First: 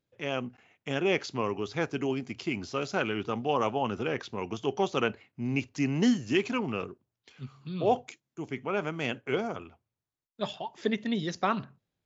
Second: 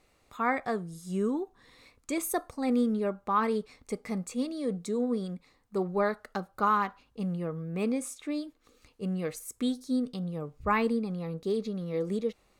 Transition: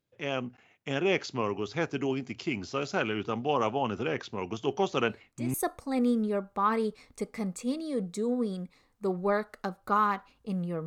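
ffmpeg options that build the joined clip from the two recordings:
-filter_complex "[1:a]asplit=2[a][b];[0:a]apad=whole_dur=10.86,atrim=end=10.86,atrim=end=5.542[c];[b]atrim=start=2.248:end=7.57[d];[a]atrim=start=1.37:end=2.25,asetpts=PTS-STARTPTS,volume=-10.5dB,afade=t=in:d=0.004:c=hsin,afade=t=out:st=0.876:d=0.004:c=hsin,adelay=4660[e];[c][d]acrossfade=d=0.004:c1=hsin:c2=hsin[f];[f][e]amix=inputs=2:normalize=0"

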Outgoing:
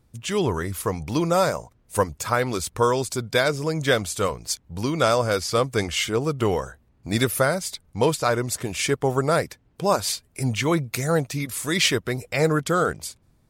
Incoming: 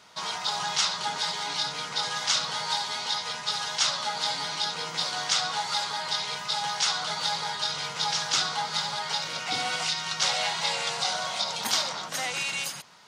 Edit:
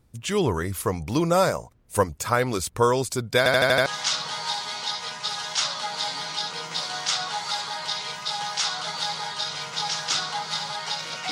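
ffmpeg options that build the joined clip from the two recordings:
-filter_complex "[0:a]apad=whole_dur=11.31,atrim=end=11.31,asplit=6[a][b][c][d][e][f];[a]atrim=end=3.462[g];[b]atrim=start=3.378:end=3.462[h];[c]atrim=start=3.378:end=3.462[i];[d]atrim=start=3.378:end=3.462[j];[e]atrim=start=3.378:end=3.462[k];[f]atrim=start=3.378:end=3.462[l];[1:a]atrim=start=2.088:end=9.54[m];[g][h]acrossfade=d=0.004:c1=hsin:c2=hsin[n];[n][i]acrossfade=d=0.004:c1=hsin:c2=hsin[o];[o][j]acrossfade=d=0.004:c1=hsin:c2=hsin[p];[p][k]acrossfade=d=0.004:c1=hsin:c2=hsin[q];[q][l]acrossfade=d=0.004:c1=hsin:c2=hsin[r];[r][m]acrossfade=d=0.004:c1=hsin:c2=hsin"

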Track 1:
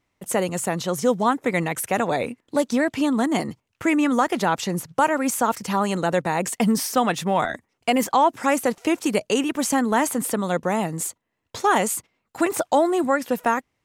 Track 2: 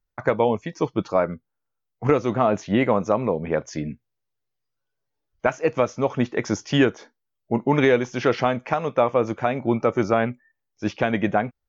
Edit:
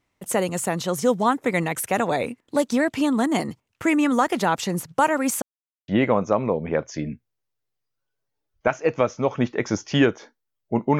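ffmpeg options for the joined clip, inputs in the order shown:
-filter_complex "[0:a]apad=whole_dur=10.99,atrim=end=10.99,asplit=2[a][b];[a]atrim=end=5.42,asetpts=PTS-STARTPTS,afade=t=out:st=5.416:d=0.004:c=hsin[c];[b]atrim=start=5.42:end=5.88,asetpts=PTS-STARTPTS,volume=0[d];[1:a]atrim=start=2.67:end=7.78,asetpts=PTS-STARTPTS,afade=t=in:d=0.004:c=hsin[e];[c][d][e]concat=n=3:v=0:a=1"

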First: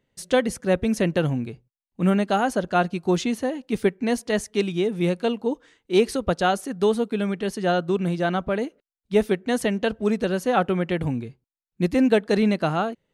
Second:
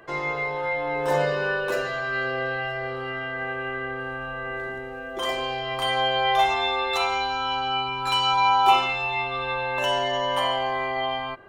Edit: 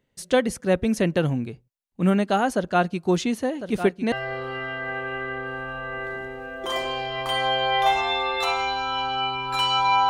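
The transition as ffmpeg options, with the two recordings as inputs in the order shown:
-filter_complex "[0:a]asplit=3[a][b][c];[a]afade=t=out:st=3.59:d=0.02[d];[b]aecho=1:1:1053|2106|3159:0.299|0.0866|0.0251,afade=t=in:st=3.59:d=0.02,afade=t=out:st=4.12:d=0.02[e];[c]afade=t=in:st=4.12:d=0.02[f];[d][e][f]amix=inputs=3:normalize=0,apad=whole_dur=10.09,atrim=end=10.09,atrim=end=4.122[g];[1:a]atrim=start=2.648:end=8.62[h];[g][h]acrossfade=d=0.004:c1=hsin:c2=hsin"

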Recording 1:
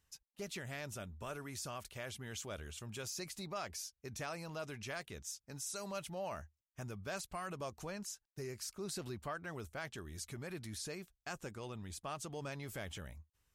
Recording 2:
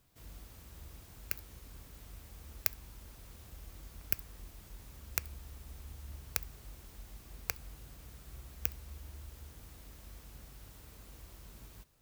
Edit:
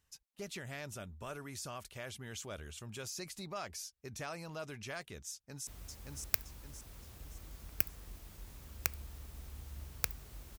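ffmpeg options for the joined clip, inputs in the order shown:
-filter_complex "[0:a]apad=whole_dur=10.58,atrim=end=10.58,atrim=end=5.672[a];[1:a]atrim=start=1.988:end=6.9[b];[a][b]acrossfade=d=0.004:c1=hsin:c2=hsin,asplit=2[c][d];[d]afade=t=in:st=5.31:d=0.01,afade=t=out:st=5.67:d=0.01,aecho=0:1:570|1140|1710|2280|2850:0.841395|0.336558|0.134623|0.0538493|0.0215397[e];[c][e]amix=inputs=2:normalize=0"

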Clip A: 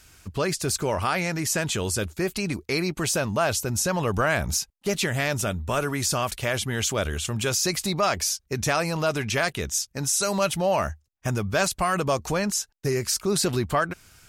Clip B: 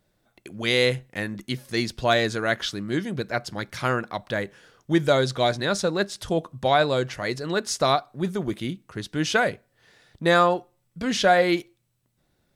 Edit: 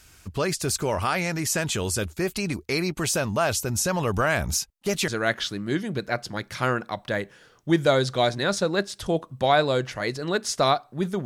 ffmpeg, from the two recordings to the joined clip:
-filter_complex "[0:a]apad=whole_dur=11.25,atrim=end=11.25,atrim=end=5.082[a];[1:a]atrim=start=2.298:end=8.47[b];[a][b]acrossfade=d=0.004:c1=hsin:c2=hsin"

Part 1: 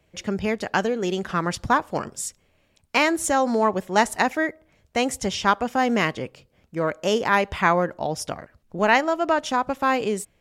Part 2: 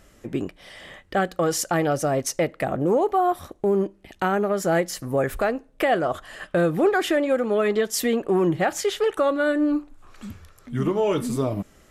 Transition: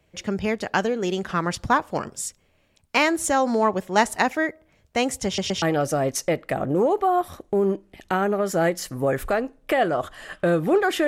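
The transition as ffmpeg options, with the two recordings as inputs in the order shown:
-filter_complex "[0:a]apad=whole_dur=11.07,atrim=end=11.07,asplit=3[a][b][c];[a]atrim=end=5.382[d];[b]atrim=start=5.258:end=5.382[e];[c]atrim=start=5.258:end=5.382[f];[1:a]atrim=start=1.728:end=7.18[g];[d][e]acrossfade=d=0.004:c1=hsin:c2=hsin[h];[h][f]acrossfade=d=0.004:c1=hsin:c2=hsin[i];[i][g]acrossfade=d=0.004:c1=hsin:c2=hsin"

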